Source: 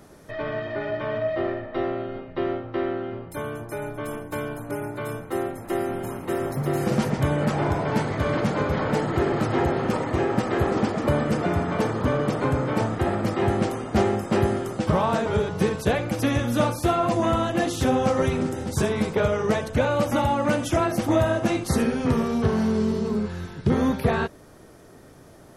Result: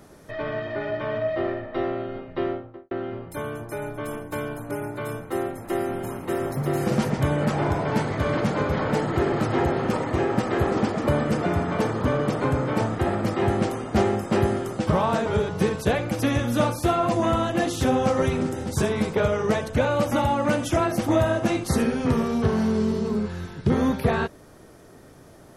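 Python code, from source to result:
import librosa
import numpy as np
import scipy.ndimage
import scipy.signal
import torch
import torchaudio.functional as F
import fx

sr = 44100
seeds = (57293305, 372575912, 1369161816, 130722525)

y = fx.studio_fade_out(x, sr, start_s=2.41, length_s=0.5)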